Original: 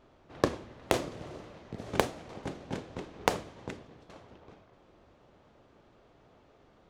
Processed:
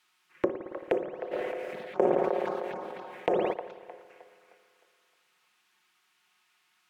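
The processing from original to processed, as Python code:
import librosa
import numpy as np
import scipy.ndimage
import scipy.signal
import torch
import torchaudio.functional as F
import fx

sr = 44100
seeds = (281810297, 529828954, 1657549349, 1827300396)

y = fx.highpass(x, sr, hz=100.0, slope=6)
y = y + 0.95 * np.pad(y, (int(5.5 * sr / 1000.0), 0))[:len(y)]
y = fx.env_phaser(y, sr, low_hz=500.0, high_hz=4100.0, full_db=-29.0)
y = fx.dmg_noise_colour(y, sr, seeds[0], colour='blue', level_db=-59.0)
y = fx.auto_wah(y, sr, base_hz=440.0, top_hz=2800.0, q=2.2, full_db=-27.0, direction='down')
y = fx.echo_wet_bandpass(y, sr, ms=309, feedback_pct=39, hz=980.0, wet_db=-8)
y = fx.rev_spring(y, sr, rt60_s=2.2, pass_ms=(55,), chirp_ms=75, drr_db=8.5)
y = fx.sustainer(y, sr, db_per_s=20.0, at=(1.31, 3.52), fade=0.02)
y = y * librosa.db_to_amplitude(2.0)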